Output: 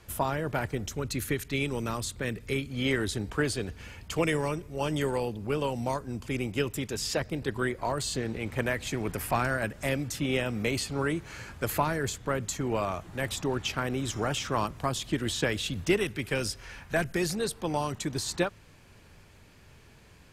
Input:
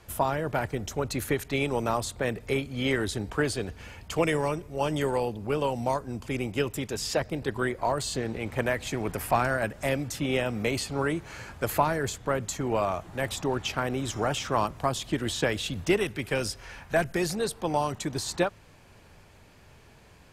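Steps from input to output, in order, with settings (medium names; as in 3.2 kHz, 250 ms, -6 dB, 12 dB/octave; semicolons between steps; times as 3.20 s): peaking EQ 730 Hz -4 dB 1.2 oct, from 0.88 s -12 dB, from 2.70 s -5 dB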